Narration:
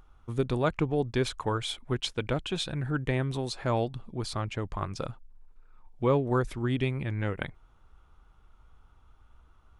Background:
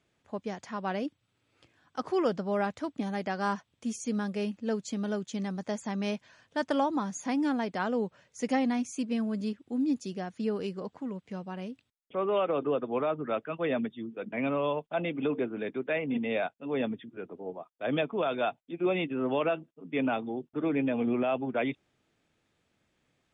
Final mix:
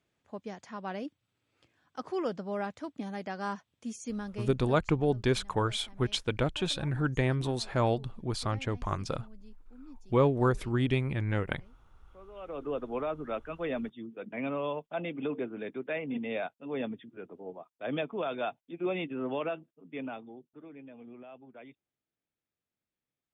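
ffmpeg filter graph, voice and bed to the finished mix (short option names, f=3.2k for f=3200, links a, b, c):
-filter_complex "[0:a]adelay=4100,volume=0.5dB[a];[1:a]volume=13.5dB,afade=t=out:st=4.13:d=0.81:silence=0.133352,afade=t=in:st=12.35:d=0.44:silence=0.11885,afade=t=out:st=19.21:d=1.46:silence=0.149624[b];[a][b]amix=inputs=2:normalize=0"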